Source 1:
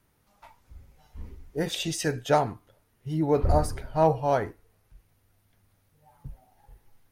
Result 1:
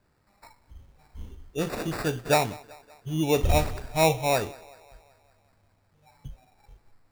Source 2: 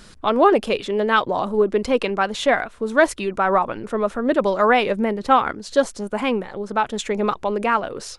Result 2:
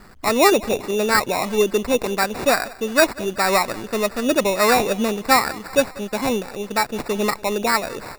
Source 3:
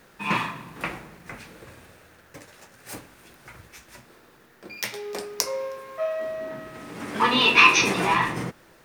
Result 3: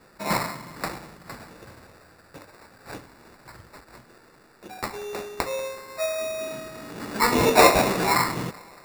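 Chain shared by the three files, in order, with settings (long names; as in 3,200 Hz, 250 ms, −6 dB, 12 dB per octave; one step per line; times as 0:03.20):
feedback echo with a high-pass in the loop 190 ms, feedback 62%, high-pass 310 Hz, level −21 dB
decimation without filtering 14×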